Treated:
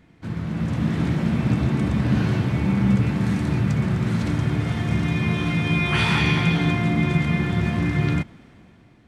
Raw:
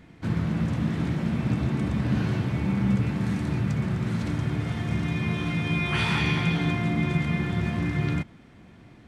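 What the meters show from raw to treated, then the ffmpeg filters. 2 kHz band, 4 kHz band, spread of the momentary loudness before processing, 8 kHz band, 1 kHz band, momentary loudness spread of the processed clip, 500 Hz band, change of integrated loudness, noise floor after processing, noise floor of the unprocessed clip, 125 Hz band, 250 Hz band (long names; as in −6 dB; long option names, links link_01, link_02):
+4.5 dB, +4.5 dB, 4 LU, +4.5 dB, +4.5 dB, 5 LU, +4.5 dB, +4.5 dB, −52 dBFS, −51 dBFS, +4.5 dB, +4.5 dB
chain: -af "dynaudnorm=framelen=120:gausssize=11:maxgain=8.5dB,volume=-3.5dB"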